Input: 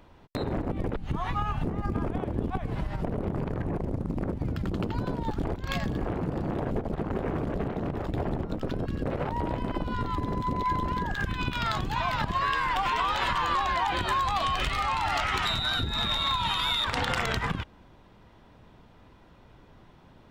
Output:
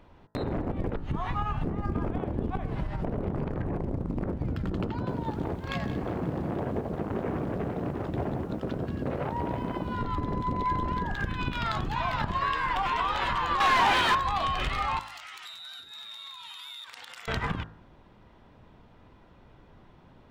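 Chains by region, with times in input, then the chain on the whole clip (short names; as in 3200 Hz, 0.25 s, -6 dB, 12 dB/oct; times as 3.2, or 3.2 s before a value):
4.9–10 HPF 71 Hz + high shelf 7800 Hz -5.5 dB + lo-fi delay 0.179 s, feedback 55%, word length 8-bit, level -12 dB
13.6–14.15 tilt shelf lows -6.5 dB, about 1400 Hz + overdrive pedal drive 30 dB, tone 2200 Hz, clips at -13 dBFS
14.99–17.28 differentiator + compressor 2.5:1, threshold -38 dBFS
whole clip: high shelf 4100 Hz -8 dB; de-hum 54.14 Hz, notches 35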